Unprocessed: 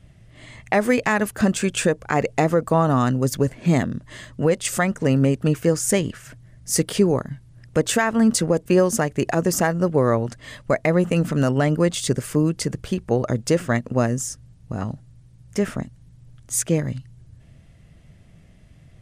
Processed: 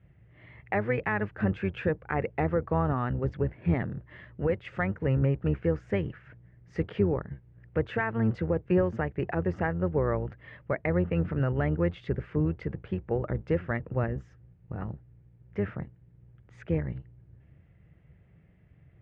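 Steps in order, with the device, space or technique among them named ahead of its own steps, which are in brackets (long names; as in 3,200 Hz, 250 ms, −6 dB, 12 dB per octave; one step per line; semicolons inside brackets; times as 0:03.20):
sub-octave bass pedal (sub-octave generator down 1 octave, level −4 dB; loudspeaker in its box 66–2,300 Hz, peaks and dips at 250 Hz −9 dB, 650 Hz −5 dB, 1,100 Hz −4 dB)
level −7 dB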